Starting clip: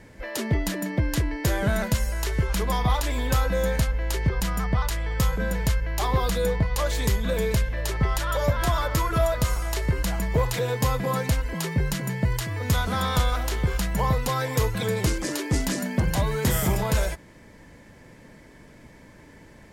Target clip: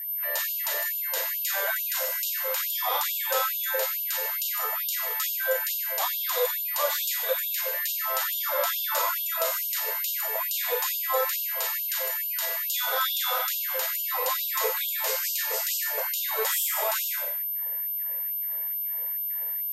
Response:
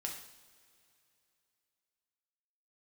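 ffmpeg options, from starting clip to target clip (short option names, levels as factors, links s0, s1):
-filter_complex "[0:a]aeval=exprs='val(0)+0.0282*sin(2*PI*13000*n/s)':c=same[s0];[1:a]atrim=start_sample=2205,afade=t=out:st=0.25:d=0.01,atrim=end_sample=11466,asetrate=29988,aresample=44100[s1];[s0][s1]afir=irnorm=-1:irlink=0,afftfilt=real='re*gte(b*sr/1024,410*pow(2700/410,0.5+0.5*sin(2*PI*2.3*pts/sr)))':imag='im*gte(b*sr/1024,410*pow(2700/410,0.5+0.5*sin(2*PI*2.3*pts/sr)))':win_size=1024:overlap=0.75"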